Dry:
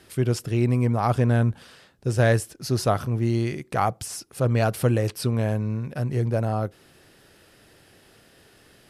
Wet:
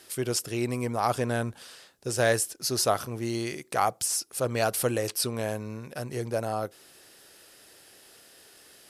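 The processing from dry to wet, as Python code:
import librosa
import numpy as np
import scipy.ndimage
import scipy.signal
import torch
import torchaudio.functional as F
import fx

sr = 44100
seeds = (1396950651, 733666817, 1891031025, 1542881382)

y = fx.bass_treble(x, sr, bass_db=-12, treble_db=9)
y = F.gain(torch.from_numpy(y), -1.5).numpy()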